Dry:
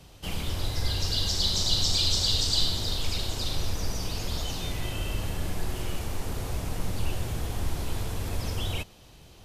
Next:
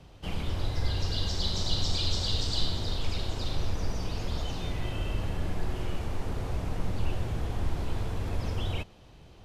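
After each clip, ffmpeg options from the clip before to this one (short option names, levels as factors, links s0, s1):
-af "aemphasis=mode=reproduction:type=75kf"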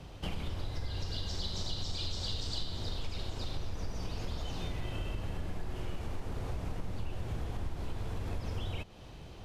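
-af "acompressor=threshold=0.0126:ratio=4,volume=1.58"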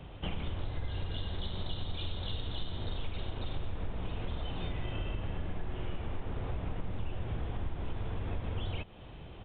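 -af "aresample=8000,aresample=44100,volume=1.12"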